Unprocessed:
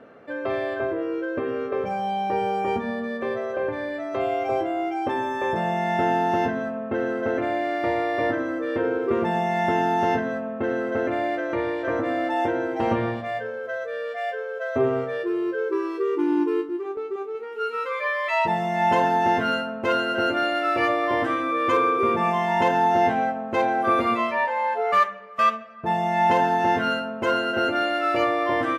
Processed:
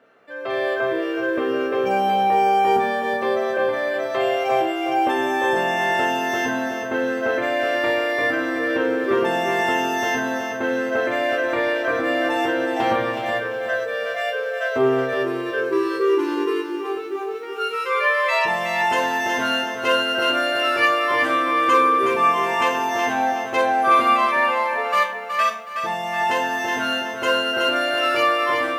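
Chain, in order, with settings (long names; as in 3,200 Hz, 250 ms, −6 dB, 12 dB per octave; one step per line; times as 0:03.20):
spectral tilt +3 dB per octave
automatic gain control
tuned comb filter 65 Hz, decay 0.34 s, harmonics all, mix 80%
feedback echo at a low word length 370 ms, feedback 35%, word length 9 bits, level −7 dB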